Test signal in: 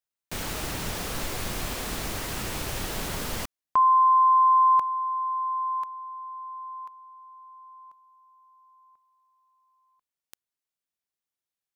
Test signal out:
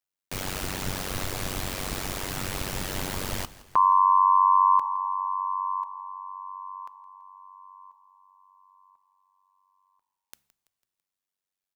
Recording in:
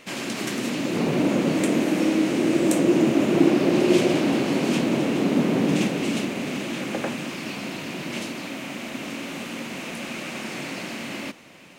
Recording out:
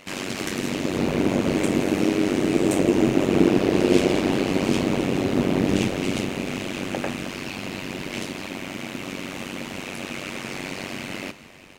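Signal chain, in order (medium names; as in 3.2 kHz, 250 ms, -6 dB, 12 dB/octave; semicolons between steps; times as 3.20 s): AM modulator 95 Hz, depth 90%; de-hum 70.67 Hz, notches 3; frequency-shifting echo 166 ms, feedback 51%, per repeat -50 Hz, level -19 dB; two-slope reverb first 0.55 s, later 4.8 s, from -19 dB, DRR 19.5 dB; trim +4 dB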